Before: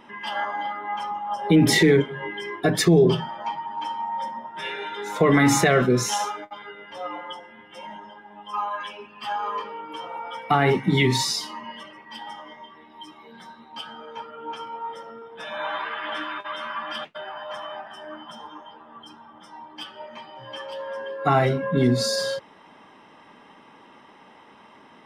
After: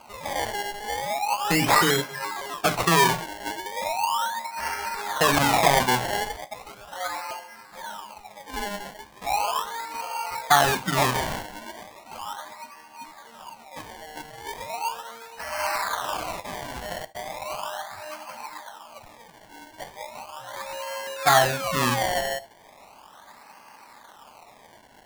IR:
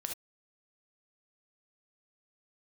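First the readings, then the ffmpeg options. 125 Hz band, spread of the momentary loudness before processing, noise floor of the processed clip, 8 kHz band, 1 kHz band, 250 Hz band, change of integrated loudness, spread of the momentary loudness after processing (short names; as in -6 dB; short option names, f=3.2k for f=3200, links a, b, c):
-7.5 dB, 22 LU, -51 dBFS, +1.5 dB, +3.0 dB, -9.0 dB, -1.0 dB, 22 LU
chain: -filter_complex "[0:a]acrusher=samples=24:mix=1:aa=0.000001:lfo=1:lforange=24:lforate=0.37,lowshelf=f=540:t=q:w=1.5:g=-9,asplit=2[a][b];[1:a]atrim=start_sample=2205[c];[b][c]afir=irnorm=-1:irlink=0,volume=-12dB[d];[a][d]amix=inputs=2:normalize=0"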